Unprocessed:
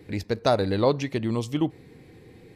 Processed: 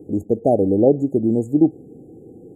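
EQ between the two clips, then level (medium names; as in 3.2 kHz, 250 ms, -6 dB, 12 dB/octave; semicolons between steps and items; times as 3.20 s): brick-wall FIR band-stop 840–6600 Hz; peaking EQ 310 Hz +14.5 dB 2.2 oct; -3.5 dB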